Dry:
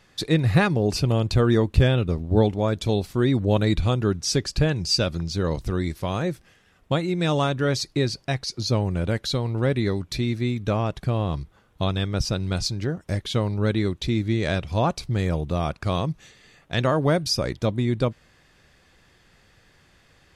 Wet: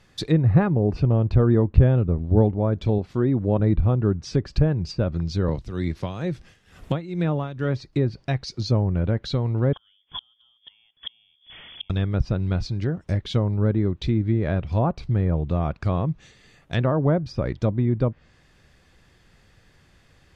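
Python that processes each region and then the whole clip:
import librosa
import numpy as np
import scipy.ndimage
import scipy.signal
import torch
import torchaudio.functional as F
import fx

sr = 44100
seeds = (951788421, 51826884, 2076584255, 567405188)

y = fx.chain(x, sr, fx.highpass(hz=130.0, slope=6),
    fx.high_shelf(hz=9400.0, db=4.0), at=(2.98, 3.6))
y = fx.chain(y, sr, fx.tremolo(hz=2.2, depth=0.77),
    fx.band_squash(depth_pct=70), at=(5.48, 7.93))
y = fx.chain(y, sr, fx.zero_step(step_db=-37.5),
    fx.freq_invert(carrier_hz=3400),
    fx.gate_flip(shuts_db=-18.0, range_db=-37), at=(9.73, 11.9))
y = fx.env_lowpass_down(y, sr, base_hz=1200.0, full_db=-18.0)
y = fx.low_shelf(y, sr, hz=240.0, db=6.0)
y = y * librosa.db_to_amplitude(-2.0)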